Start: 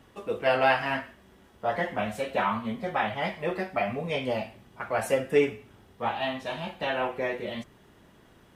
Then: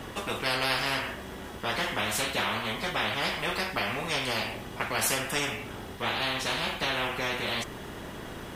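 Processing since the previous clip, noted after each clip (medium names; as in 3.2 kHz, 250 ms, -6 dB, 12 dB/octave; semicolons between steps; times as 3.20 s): spectrum-flattening compressor 4:1; trim -2.5 dB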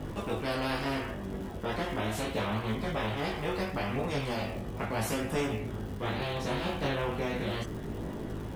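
chorus voices 2, 0.37 Hz, delay 20 ms, depth 1.8 ms; tilt shelf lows +8 dB, about 850 Hz; crackle 160 per s -41 dBFS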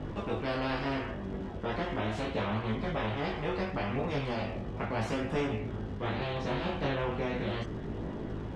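distance through air 130 m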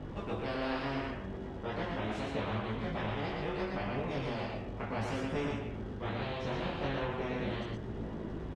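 delay 118 ms -3 dB; trim -4.5 dB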